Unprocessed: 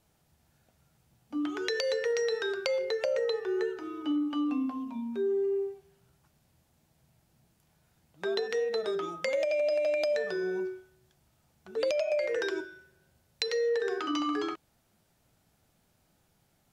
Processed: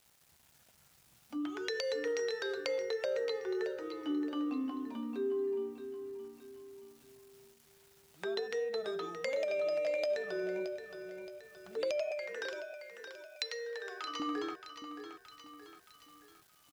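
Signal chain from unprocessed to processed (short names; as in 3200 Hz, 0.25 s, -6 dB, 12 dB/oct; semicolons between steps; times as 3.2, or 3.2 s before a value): bit-crush 11-bit; 12.11–14.2 HPF 750 Hz 12 dB/oct; feedback echo 0.622 s, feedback 36%, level -10 dB; mismatched tape noise reduction encoder only; gain -5.5 dB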